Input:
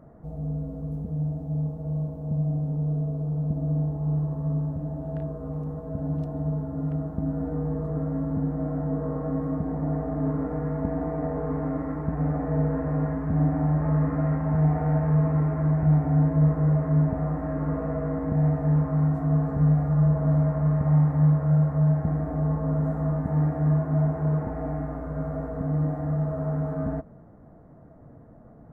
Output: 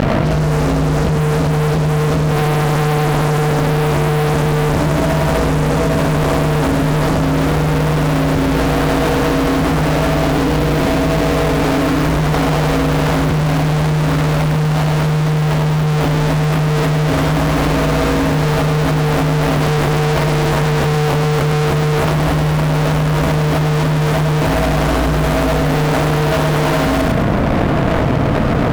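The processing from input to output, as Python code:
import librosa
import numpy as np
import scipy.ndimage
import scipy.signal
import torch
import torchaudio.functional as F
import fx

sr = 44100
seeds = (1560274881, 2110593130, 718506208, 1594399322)

y = fx.median_filter(x, sr, points=41, at=(10.3, 11.22))
y = fx.fuzz(y, sr, gain_db=52.0, gate_db=-52.0)
y = fx.echo_feedback(y, sr, ms=104, feedback_pct=36, wet_db=-5)
y = fx.env_flatten(y, sr, amount_pct=100)
y = y * 10.0 ** (-5.5 / 20.0)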